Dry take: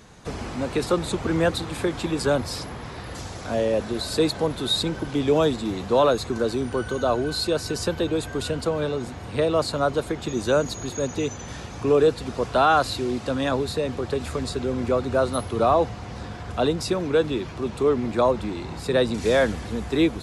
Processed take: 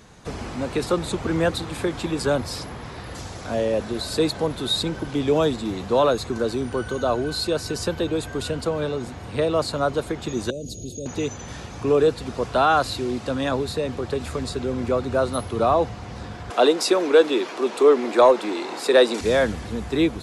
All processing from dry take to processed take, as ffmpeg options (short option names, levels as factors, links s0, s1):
-filter_complex "[0:a]asettb=1/sr,asplit=3[s0][s1][s2];[s0]atrim=end=10.504[s3];[s1]atrim=start=10.5:end=11.06,asetpts=PTS-STARTPTS,afade=t=in:d=0.004:c=qsin,afade=t=out:st=0.556:d=0.004:c=qsin,equalizer=f=1600:w=0.68:g=-15,acompressor=threshold=0.0447:ratio=6:attack=3.2:release=140:knee=1:detection=peak,asuperstop=centerf=1300:order=8:qfactor=0.64[s4];[s2]atrim=start=11.056[s5];[s3][s4]acrossfade=d=0.004:c1=hsin:c2=qsin[s6];[s6][s5]acrossfade=d=0.004:c1=qsin:c2=hsin,asettb=1/sr,asplit=3[s7][s8][s9];[s7]atrim=end=16.504[s10];[s8]atrim=start=16.5:end=19.21,asetpts=PTS-STARTPTS,afade=t=in:d=0.004:c=qsin,afade=t=out:st=2.706:d=0.004:c=qsin,highpass=f=310:w=0.5412,highpass=f=310:w=1.3066,acontrast=77[s11];[s9]atrim=start=19.206[s12];[s10][s11]acrossfade=d=0.004:c1=hsin:c2=qsin[s13];[s13][s12]acrossfade=d=0.004:c1=qsin:c2=hsin"